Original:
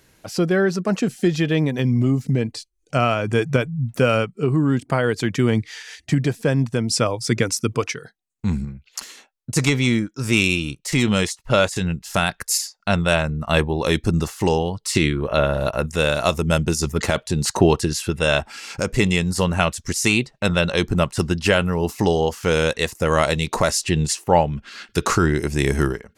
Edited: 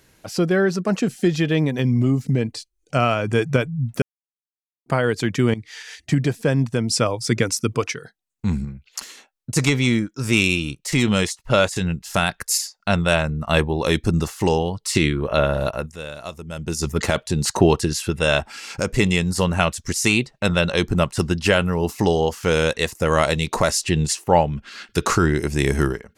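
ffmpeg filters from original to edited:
ffmpeg -i in.wav -filter_complex "[0:a]asplit=6[link_01][link_02][link_03][link_04][link_05][link_06];[link_01]atrim=end=4.02,asetpts=PTS-STARTPTS,afade=type=out:start_time=4.016:duration=0.004:curve=hsin[link_07];[link_02]atrim=start=4.02:end=4.86,asetpts=PTS-STARTPTS,volume=0[link_08];[link_03]atrim=start=4.86:end=5.54,asetpts=PTS-STARTPTS,afade=type=in:duration=0.004:curve=hsin,afade=type=out:start_time=0.676:duration=0.004:curve=hsin:silence=0.125893[link_09];[link_04]atrim=start=5.54:end=15.97,asetpts=PTS-STARTPTS,afade=type=in:duration=0.27:silence=0.125893,afade=type=out:start_time=10.08:duration=0.35:silence=0.199526[link_10];[link_05]atrim=start=15.97:end=16.55,asetpts=PTS-STARTPTS,volume=-14dB[link_11];[link_06]atrim=start=16.55,asetpts=PTS-STARTPTS,afade=type=in:duration=0.35:silence=0.199526[link_12];[link_07][link_08][link_09][link_10][link_11][link_12]concat=n=6:v=0:a=1" out.wav

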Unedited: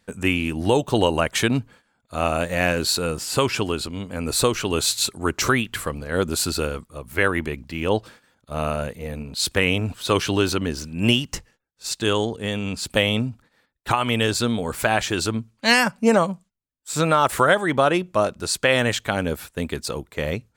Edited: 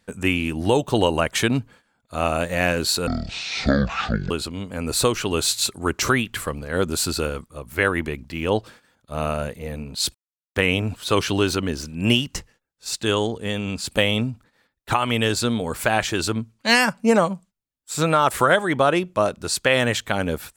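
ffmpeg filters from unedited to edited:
ffmpeg -i in.wav -filter_complex "[0:a]asplit=4[link_01][link_02][link_03][link_04];[link_01]atrim=end=3.074[link_05];[link_02]atrim=start=3.07:end=3.7,asetpts=PTS-STARTPTS,asetrate=22491,aresample=44100,atrim=end_sample=54476,asetpts=PTS-STARTPTS[link_06];[link_03]atrim=start=3.696:end=9.54,asetpts=PTS-STARTPTS,afade=type=out:start_time=5.84:duration=0.004:curve=hsin,apad=pad_dur=0.41[link_07];[link_04]atrim=start=9.54,asetpts=PTS-STARTPTS,afade=type=in:duration=0.004:curve=hsin[link_08];[link_05][link_06]acrossfade=duration=0.004:curve1=hsin:curve2=hsin[link_09];[link_07][link_08]concat=n=2:v=0:a=1[link_10];[link_09][link_10]acrossfade=duration=0.004:curve1=hsin:curve2=hsin" out.wav

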